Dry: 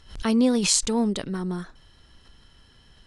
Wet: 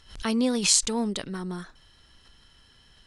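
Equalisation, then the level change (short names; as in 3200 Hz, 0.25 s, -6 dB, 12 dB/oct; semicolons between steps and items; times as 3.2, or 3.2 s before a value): tilt shelf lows -3 dB; -2.0 dB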